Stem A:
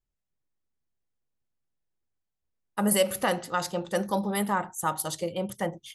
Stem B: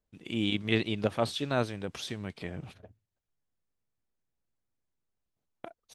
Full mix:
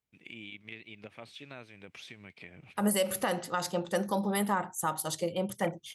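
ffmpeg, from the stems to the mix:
ffmpeg -i stem1.wav -i stem2.wav -filter_complex "[0:a]alimiter=limit=-17.5dB:level=0:latency=1:release=99,volume=-1dB,asplit=2[link_01][link_02];[1:a]equalizer=frequency=2300:width=2.1:gain=14,acompressor=threshold=-34dB:ratio=4,volume=-2dB[link_03];[link_02]apad=whole_len=262324[link_04];[link_03][link_04]sidechaingate=range=-8dB:threshold=-41dB:ratio=16:detection=peak[link_05];[link_01][link_05]amix=inputs=2:normalize=0,highpass=87" out.wav

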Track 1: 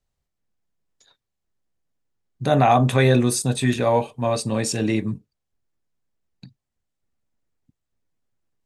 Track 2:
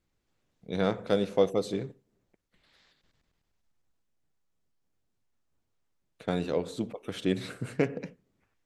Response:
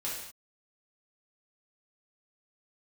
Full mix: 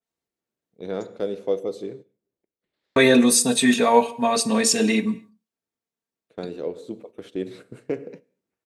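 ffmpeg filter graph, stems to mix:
-filter_complex "[0:a]highpass=220,aecho=1:1:4.4:0.85,volume=1dB,asplit=3[link_01][link_02][link_03];[link_01]atrim=end=1.07,asetpts=PTS-STARTPTS,afade=type=out:start_time=1.066:duration=0.004:curve=hsin[link_04];[link_02]atrim=start=1.07:end=2.96,asetpts=PTS-STARTPTS,volume=0[link_05];[link_03]atrim=start=2.96,asetpts=PTS-STARTPTS,afade=type=in:duration=0.004:curve=hsin[link_06];[link_04][link_05][link_06]concat=n=3:v=0:a=1,asplit=2[link_07][link_08];[link_08]volume=-18dB[link_09];[1:a]highpass=frequency=110:poles=1,equalizer=frequency=390:width_type=o:width=1.3:gain=10,adelay=100,volume=-8.5dB,asplit=2[link_10][link_11];[link_11]volume=-17dB[link_12];[2:a]atrim=start_sample=2205[link_13];[link_09][link_12]amix=inputs=2:normalize=0[link_14];[link_14][link_13]afir=irnorm=-1:irlink=0[link_15];[link_07][link_10][link_15]amix=inputs=3:normalize=0,agate=range=-8dB:threshold=-42dB:ratio=16:detection=peak,adynamicequalizer=threshold=0.02:dfrequency=2700:dqfactor=0.7:tfrequency=2700:tqfactor=0.7:attack=5:release=100:ratio=0.375:range=1.5:mode=boostabove:tftype=highshelf"

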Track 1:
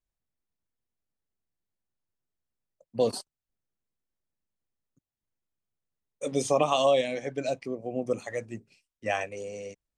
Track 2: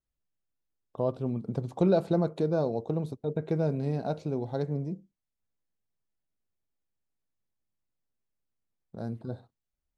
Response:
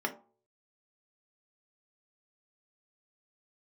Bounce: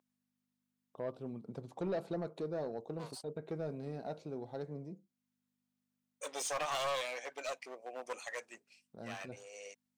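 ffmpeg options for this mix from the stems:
-filter_complex "[0:a]aeval=exprs='clip(val(0),-1,0.0251)':channel_layout=same,aeval=exprs='val(0)+0.00398*(sin(2*PI*50*n/s)+sin(2*PI*2*50*n/s)/2+sin(2*PI*3*50*n/s)/3+sin(2*PI*4*50*n/s)/4+sin(2*PI*5*50*n/s)/5)':channel_layout=same,highpass=780,volume=-1dB[link_01];[1:a]volume=-7.5dB,asplit=2[link_02][link_03];[link_03]apad=whole_len=439838[link_04];[link_01][link_04]sidechaincompress=threshold=-48dB:ratio=8:attack=42:release=460[link_05];[link_05][link_02]amix=inputs=2:normalize=0,highpass=frequency=290:poles=1,asoftclip=type=tanh:threshold=-30dB"

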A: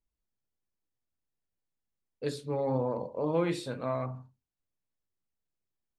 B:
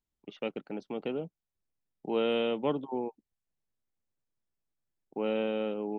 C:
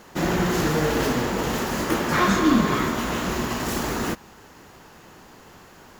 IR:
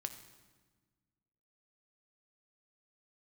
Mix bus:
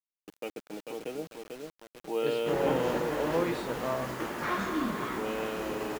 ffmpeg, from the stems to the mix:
-filter_complex "[0:a]volume=0.5dB[link_01];[1:a]aecho=1:1:6.4:0.41,volume=-4dB,asplit=3[link_02][link_03][link_04];[link_03]volume=-14.5dB[link_05];[link_04]volume=-4dB[link_06];[2:a]adelay=2300,volume=-13dB,asplit=2[link_07][link_08];[link_08]volume=-5.5dB[link_09];[3:a]atrim=start_sample=2205[link_10];[link_05][link_09]amix=inputs=2:normalize=0[link_11];[link_11][link_10]afir=irnorm=-1:irlink=0[link_12];[link_06]aecho=0:1:444|888|1332|1776|2220:1|0.33|0.109|0.0359|0.0119[link_13];[link_01][link_02][link_07][link_12][link_13]amix=inputs=5:normalize=0,bass=frequency=250:gain=-7,treble=frequency=4000:gain=-9,acrusher=bits=7:mix=0:aa=0.000001"

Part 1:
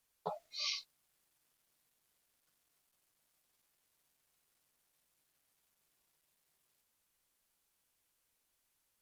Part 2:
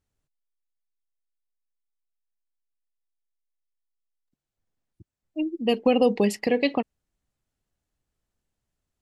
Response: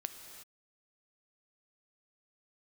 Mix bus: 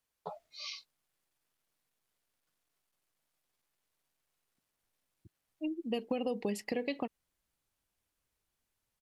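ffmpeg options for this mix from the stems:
-filter_complex "[0:a]volume=-2.5dB[link_01];[1:a]highshelf=frequency=6400:gain=8.5,acompressor=threshold=-22dB:ratio=6,adelay=250,volume=-8dB[link_02];[link_01][link_02]amix=inputs=2:normalize=0,highshelf=frequency=4500:gain=-5.5"

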